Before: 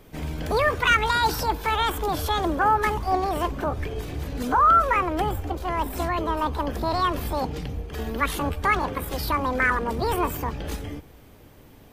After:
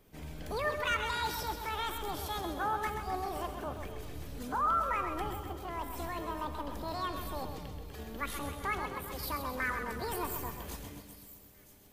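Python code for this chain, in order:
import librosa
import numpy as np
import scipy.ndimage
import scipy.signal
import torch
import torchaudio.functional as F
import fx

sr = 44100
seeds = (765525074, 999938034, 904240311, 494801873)

y = fx.high_shelf(x, sr, hz=5300.0, db=fx.steps((0.0, 5.0), (9.22, 10.5)))
y = fx.echo_feedback(y, sr, ms=130, feedback_pct=59, wet_db=-8.0)
y = fx.dmg_crackle(y, sr, seeds[0], per_s=10.0, level_db=-36.0)
y = fx.comb_fb(y, sr, f0_hz=200.0, decay_s=1.3, harmonics='all', damping=0.0, mix_pct=70)
y = fx.echo_wet_highpass(y, sr, ms=971, feedback_pct=65, hz=5500.0, wet_db=-13.0)
y = y * librosa.db_to_amplitude(-3.5)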